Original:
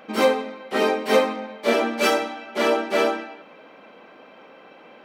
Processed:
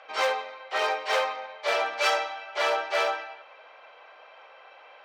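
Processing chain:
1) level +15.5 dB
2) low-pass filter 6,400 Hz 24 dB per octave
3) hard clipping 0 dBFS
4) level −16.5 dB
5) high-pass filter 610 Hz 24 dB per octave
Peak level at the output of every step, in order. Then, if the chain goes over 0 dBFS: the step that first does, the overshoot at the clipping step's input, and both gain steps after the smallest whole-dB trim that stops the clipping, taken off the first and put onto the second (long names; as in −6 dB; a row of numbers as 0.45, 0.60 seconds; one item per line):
+9.5, +9.5, 0.0, −16.5, −12.0 dBFS
step 1, 9.5 dB
step 1 +5.5 dB, step 4 −6.5 dB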